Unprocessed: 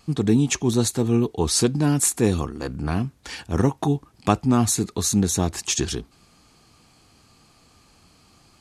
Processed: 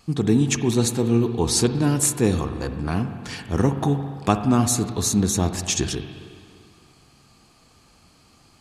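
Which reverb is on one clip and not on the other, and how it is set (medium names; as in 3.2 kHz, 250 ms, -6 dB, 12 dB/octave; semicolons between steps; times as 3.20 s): spring tank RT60 2.2 s, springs 43/57 ms, chirp 60 ms, DRR 8 dB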